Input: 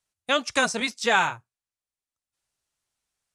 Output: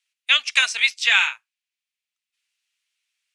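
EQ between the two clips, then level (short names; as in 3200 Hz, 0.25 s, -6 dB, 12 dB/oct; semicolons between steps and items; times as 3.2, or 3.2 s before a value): resonant high-pass 2500 Hz, resonance Q 2.3; high shelf 5800 Hz -10.5 dB; +7.0 dB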